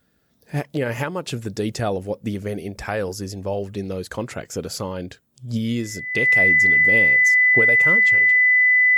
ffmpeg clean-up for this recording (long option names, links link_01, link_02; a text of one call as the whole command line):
ffmpeg -i in.wav -af "bandreject=frequency=2000:width=30" out.wav